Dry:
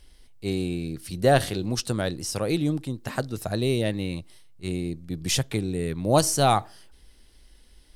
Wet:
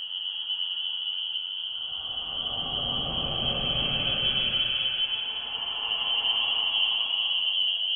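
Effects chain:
dynamic equaliser 1,600 Hz, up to −4 dB, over −36 dBFS, Q 0.82
voice inversion scrambler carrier 3,200 Hz
extreme stretch with random phases 13×, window 0.25 s, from 0:05.06

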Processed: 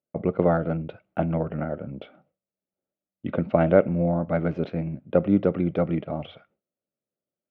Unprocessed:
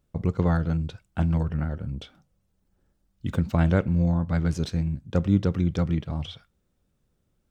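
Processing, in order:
noise gate with hold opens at −53 dBFS
loudspeaker in its box 260–2,300 Hz, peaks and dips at 610 Hz +8 dB, 1,000 Hz −8 dB, 1,700 Hz −9 dB
level +6.5 dB

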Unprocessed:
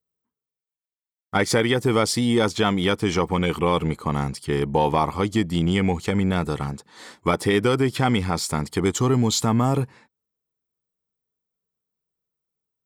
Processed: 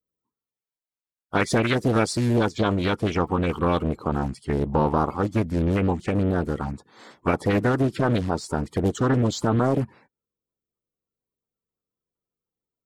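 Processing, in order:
spectral magnitudes quantised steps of 30 dB
high-shelf EQ 2,400 Hz −5.5 dB, from 0:02.28 −10.5 dB
highs frequency-modulated by the lows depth 0.61 ms

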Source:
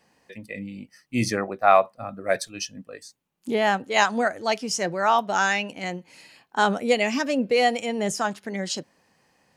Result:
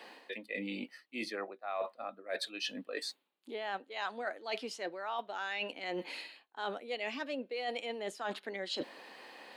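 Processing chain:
high-pass filter 290 Hz 24 dB per octave
high shelf with overshoot 4,800 Hz −7 dB, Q 3
reversed playback
downward compressor 10 to 1, threshold −49 dBFS, peak gain reduction 36.5 dB
reversed playback
level +12.5 dB

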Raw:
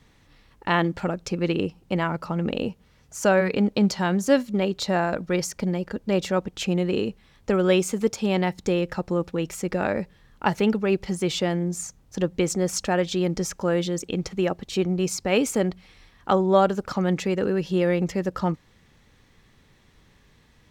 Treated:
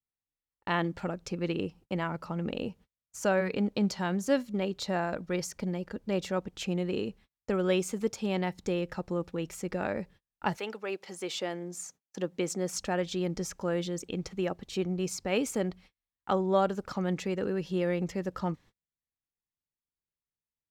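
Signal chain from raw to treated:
noise gate −44 dBFS, range −38 dB
0:10.56–0:12.73: high-pass filter 600 Hz → 150 Hz 12 dB per octave
level −7.5 dB

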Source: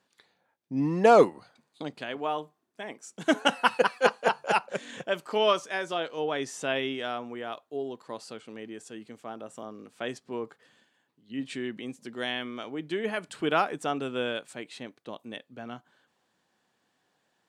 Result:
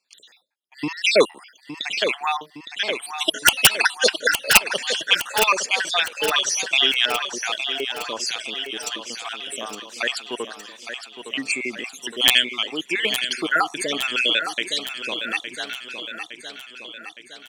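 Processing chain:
time-frequency cells dropped at random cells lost 63%
meter weighting curve D
noise gate with hold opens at −58 dBFS
spectral tilt +2.5 dB per octave
in parallel at −1 dB: downward compressor 6 to 1, threshold −35 dBFS, peak gain reduction 20.5 dB
on the sum: harmonic generator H 4 −44 dB, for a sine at −2 dBFS
wrap-around overflow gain 6.5 dB
on a send: repeating echo 863 ms, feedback 57%, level −9 dB
on the sum: level +5 dB

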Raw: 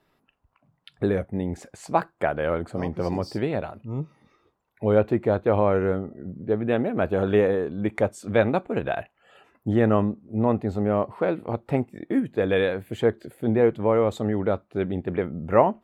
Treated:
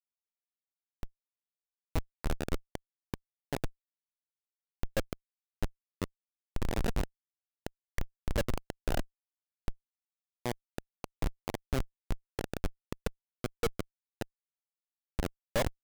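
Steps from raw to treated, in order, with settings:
output level in coarse steps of 16 dB
comparator with hysteresis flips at −25.5 dBFS
level +5.5 dB

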